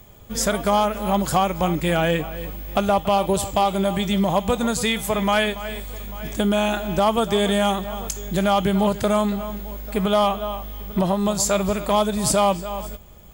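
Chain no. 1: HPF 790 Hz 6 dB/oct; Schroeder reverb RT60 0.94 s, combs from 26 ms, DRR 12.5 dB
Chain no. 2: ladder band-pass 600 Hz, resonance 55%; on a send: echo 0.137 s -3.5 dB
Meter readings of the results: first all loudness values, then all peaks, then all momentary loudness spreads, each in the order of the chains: -25.0, -30.0 LUFS; -9.0, -13.5 dBFS; 12, 13 LU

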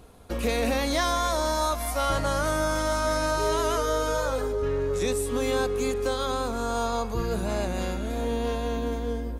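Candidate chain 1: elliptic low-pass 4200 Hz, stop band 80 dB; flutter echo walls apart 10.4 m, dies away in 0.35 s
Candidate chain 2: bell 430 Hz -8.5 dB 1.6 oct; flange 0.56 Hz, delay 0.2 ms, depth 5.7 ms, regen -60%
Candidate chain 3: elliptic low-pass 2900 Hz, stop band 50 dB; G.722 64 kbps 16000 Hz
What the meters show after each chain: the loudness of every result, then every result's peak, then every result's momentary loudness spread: -27.5, -34.0, -28.0 LUFS; -14.5, -19.5, -16.0 dBFS; 5, 5, 4 LU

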